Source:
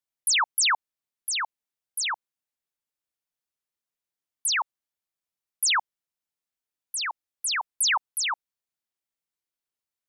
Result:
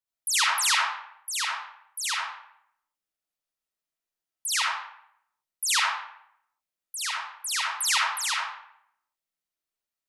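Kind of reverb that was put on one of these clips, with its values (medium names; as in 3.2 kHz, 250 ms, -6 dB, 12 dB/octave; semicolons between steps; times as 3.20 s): algorithmic reverb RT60 0.7 s, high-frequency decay 0.75×, pre-delay 25 ms, DRR -5 dB; trim -5.5 dB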